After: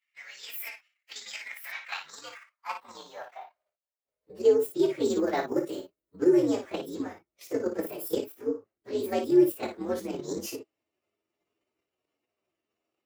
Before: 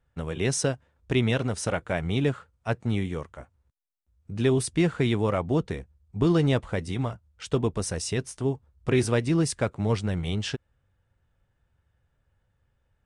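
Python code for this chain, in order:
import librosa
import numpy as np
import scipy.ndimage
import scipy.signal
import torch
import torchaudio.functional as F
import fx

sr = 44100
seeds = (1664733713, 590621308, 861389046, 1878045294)

p1 = fx.partial_stretch(x, sr, pct=126)
p2 = fx.over_compress(p1, sr, threshold_db=-29.0, ratio=-1.0)
p3 = p1 + (p2 * 10.0 ** (3.0 / 20.0))
p4 = fx.high_shelf(p3, sr, hz=9100.0, db=12.0, at=(5.05, 6.19))
p5 = fx.level_steps(p4, sr, step_db=10)
p6 = fx.filter_sweep_highpass(p5, sr, from_hz=2000.0, to_hz=340.0, start_s=1.46, end_s=4.89, q=4.1)
p7 = p6 + fx.room_early_taps(p6, sr, ms=(22, 56), db=(-10.0, -7.5), dry=0)
p8 = fx.detune_double(p7, sr, cents=53, at=(8.34, 9.04))
y = p8 * 10.0 ** (-7.5 / 20.0)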